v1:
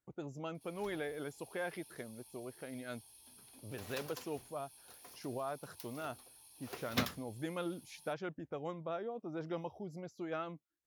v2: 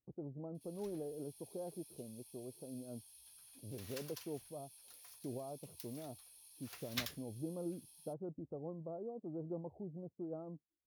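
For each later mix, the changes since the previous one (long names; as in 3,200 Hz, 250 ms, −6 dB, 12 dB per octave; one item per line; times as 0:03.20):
speech: add Gaussian smoothing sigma 13 samples
background: add guitar amp tone stack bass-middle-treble 10-0-10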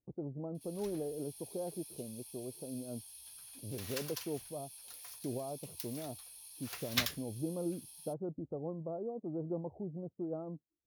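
speech +5.0 dB
background +8.0 dB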